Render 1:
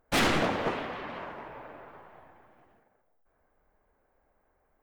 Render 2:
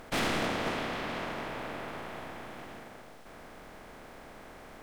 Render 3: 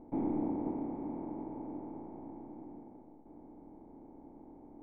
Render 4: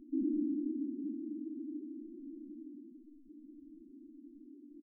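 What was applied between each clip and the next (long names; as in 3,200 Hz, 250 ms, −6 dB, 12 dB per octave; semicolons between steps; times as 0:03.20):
compressor on every frequency bin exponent 0.4; level −8 dB
formant resonators in series u; level +7 dB
far-end echo of a speakerphone 240 ms, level −19 dB; spectral peaks only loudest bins 4; level +2 dB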